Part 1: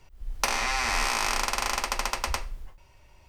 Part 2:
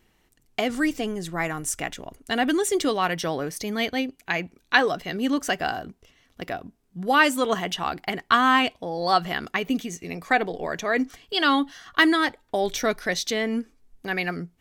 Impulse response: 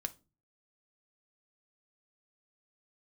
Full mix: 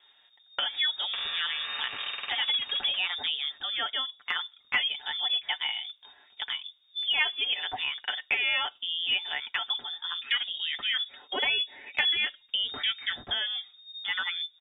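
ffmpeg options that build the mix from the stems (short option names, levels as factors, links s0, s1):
-filter_complex "[0:a]adelay=700,volume=0.447[s0];[1:a]volume=1,asplit=2[s1][s2];[s2]volume=0.211[s3];[2:a]atrim=start_sample=2205[s4];[s3][s4]afir=irnorm=-1:irlink=0[s5];[s0][s1][s5]amix=inputs=3:normalize=0,aecho=1:1:6.4:0.6,lowpass=f=3100:t=q:w=0.5098,lowpass=f=3100:t=q:w=0.6013,lowpass=f=3100:t=q:w=0.9,lowpass=f=3100:t=q:w=2.563,afreqshift=-3700,acompressor=threshold=0.0224:ratio=2"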